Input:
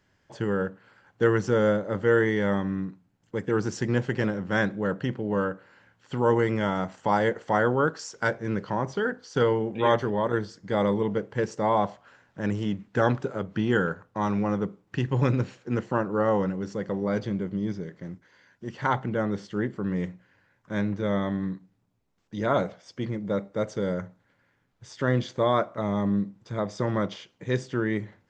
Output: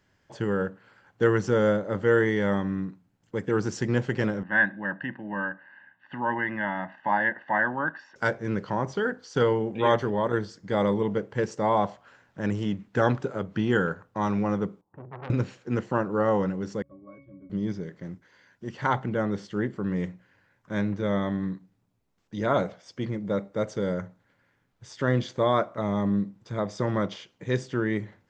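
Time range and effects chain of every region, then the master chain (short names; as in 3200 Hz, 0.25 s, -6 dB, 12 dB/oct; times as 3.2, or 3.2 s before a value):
4.43–8.16 speaker cabinet 320–2700 Hz, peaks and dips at 400 Hz -6 dB, 730 Hz -6 dB, 1100 Hz -7 dB, 1600 Hz +8 dB, 2300 Hz -5 dB + comb 1.1 ms, depth 85%
14.81–15.3 ladder low-pass 1000 Hz, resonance 65% + notches 60/120/180/240/300/360/420/480/540 Hz + core saturation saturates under 1600 Hz
16.82–17.5 gate -31 dBFS, range -7 dB + octave resonator C#, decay 0.32 s
whole clip: dry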